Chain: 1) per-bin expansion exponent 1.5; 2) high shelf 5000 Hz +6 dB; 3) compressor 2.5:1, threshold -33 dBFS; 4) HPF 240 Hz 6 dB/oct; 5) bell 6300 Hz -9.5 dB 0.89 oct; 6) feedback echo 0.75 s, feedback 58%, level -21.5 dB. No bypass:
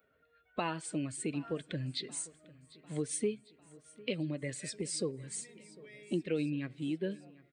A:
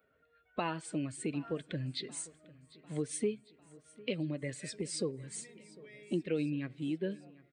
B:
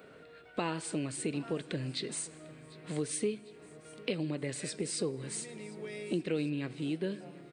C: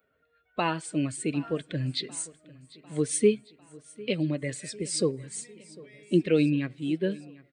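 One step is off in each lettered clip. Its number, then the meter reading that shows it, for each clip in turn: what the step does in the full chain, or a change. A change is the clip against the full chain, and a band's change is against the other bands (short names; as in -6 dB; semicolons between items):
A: 2, 8 kHz band -3.0 dB; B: 1, momentary loudness spread change +2 LU; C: 3, mean gain reduction 6.0 dB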